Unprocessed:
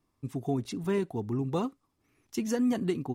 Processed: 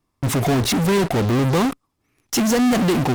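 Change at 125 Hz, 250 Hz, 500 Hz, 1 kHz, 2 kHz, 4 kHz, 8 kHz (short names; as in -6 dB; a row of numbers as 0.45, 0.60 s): +14.5, +11.5, +11.0, +16.0, +18.5, +20.0, +19.0 dB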